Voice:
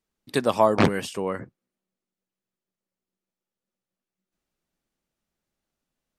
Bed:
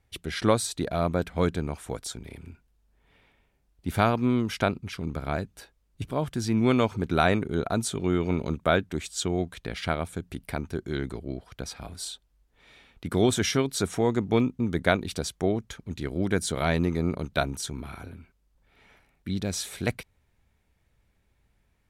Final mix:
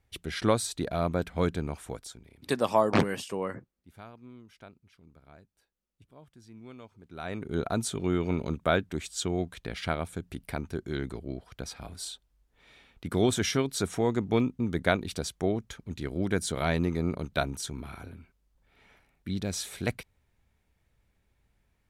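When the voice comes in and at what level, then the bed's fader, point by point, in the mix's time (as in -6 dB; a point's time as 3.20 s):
2.15 s, -4.5 dB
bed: 1.84 s -2.5 dB
2.78 s -25 dB
7.04 s -25 dB
7.55 s -2.5 dB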